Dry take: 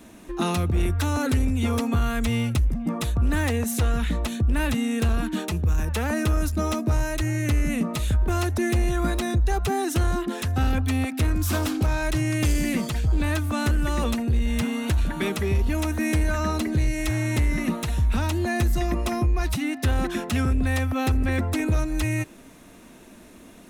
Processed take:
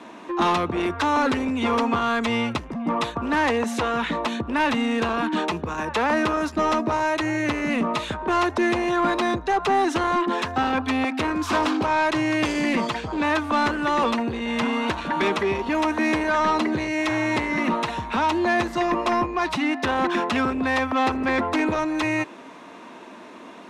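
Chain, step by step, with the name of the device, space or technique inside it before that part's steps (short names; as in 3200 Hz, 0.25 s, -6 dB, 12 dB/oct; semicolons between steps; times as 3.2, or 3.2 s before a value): intercom (BPF 300–3900 Hz; bell 1000 Hz +9 dB 0.47 oct; soft clip -22 dBFS, distortion -17 dB); gain +7.5 dB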